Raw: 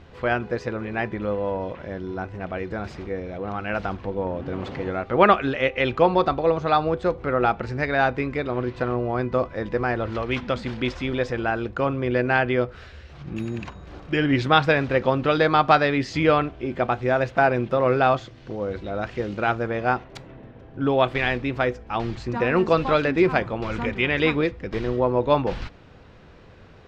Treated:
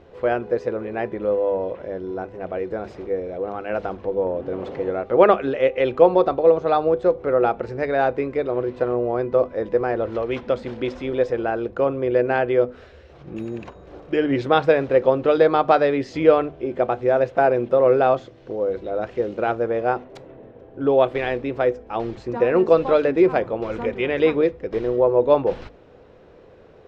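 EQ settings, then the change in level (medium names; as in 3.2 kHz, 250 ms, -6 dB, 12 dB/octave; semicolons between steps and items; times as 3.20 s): peaking EQ 480 Hz +13 dB 1.5 oct; hum notches 50/100/150/200/250 Hz; band-stop 4.6 kHz, Q 30; -6.5 dB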